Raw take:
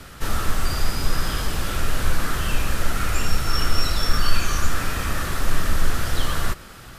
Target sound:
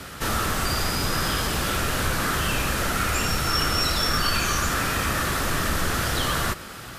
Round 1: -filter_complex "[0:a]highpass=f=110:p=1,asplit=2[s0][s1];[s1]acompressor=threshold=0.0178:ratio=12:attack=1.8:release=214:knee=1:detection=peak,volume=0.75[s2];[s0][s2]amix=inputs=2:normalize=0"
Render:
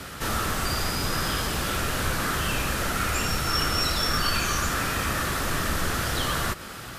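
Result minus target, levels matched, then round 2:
compression: peak gain reduction +9 dB
-filter_complex "[0:a]highpass=f=110:p=1,asplit=2[s0][s1];[s1]acompressor=threshold=0.0562:ratio=12:attack=1.8:release=214:knee=1:detection=peak,volume=0.75[s2];[s0][s2]amix=inputs=2:normalize=0"

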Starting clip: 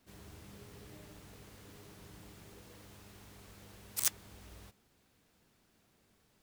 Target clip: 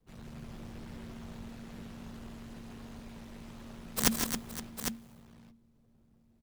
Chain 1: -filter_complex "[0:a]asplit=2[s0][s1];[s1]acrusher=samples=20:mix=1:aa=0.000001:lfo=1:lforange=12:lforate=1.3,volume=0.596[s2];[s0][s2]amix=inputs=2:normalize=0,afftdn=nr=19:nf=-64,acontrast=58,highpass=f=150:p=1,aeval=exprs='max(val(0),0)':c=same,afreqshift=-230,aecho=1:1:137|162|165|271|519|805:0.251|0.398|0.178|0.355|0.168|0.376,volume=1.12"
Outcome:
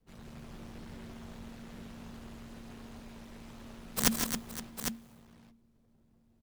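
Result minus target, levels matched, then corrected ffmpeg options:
125 Hz band -2.5 dB
-filter_complex "[0:a]asplit=2[s0][s1];[s1]acrusher=samples=20:mix=1:aa=0.000001:lfo=1:lforange=12:lforate=1.3,volume=0.596[s2];[s0][s2]amix=inputs=2:normalize=0,afftdn=nr=19:nf=-64,acontrast=58,highpass=f=71:p=1,aeval=exprs='max(val(0),0)':c=same,afreqshift=-230,aecho=1:1:137|162|165|271|519|805:0.251|0.398|0.178|0.355|0.168|0.376,volume=1.12"

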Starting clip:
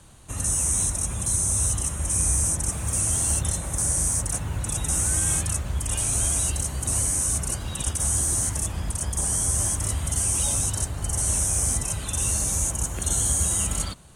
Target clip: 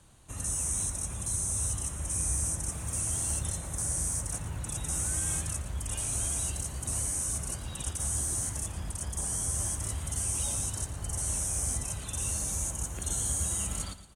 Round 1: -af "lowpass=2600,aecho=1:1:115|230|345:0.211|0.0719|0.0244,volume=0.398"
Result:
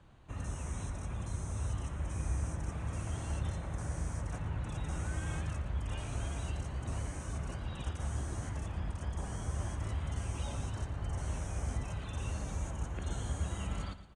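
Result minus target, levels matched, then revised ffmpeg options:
2 kHz band +6.5 dB
-af "aecho=1:1:115|230|345:0.211|0.0719|0.0244,volume=0.398"

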